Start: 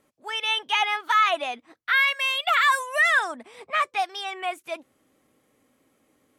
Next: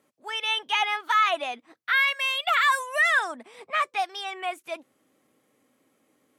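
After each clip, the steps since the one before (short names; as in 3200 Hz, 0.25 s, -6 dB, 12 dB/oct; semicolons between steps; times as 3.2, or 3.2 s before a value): HPF 130 Hz 12 dB/oct; gain -1.5 dB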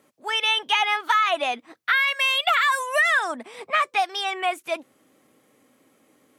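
compressor, threshold -24 dBFS, peak gain reduction 7 dB; gain +7 dB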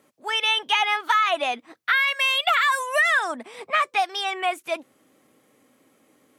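nothing audible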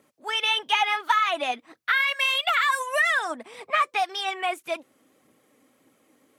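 phaser 1.7 Hz, delay 4.5 ms, feedback 34%; gain -2.5 dB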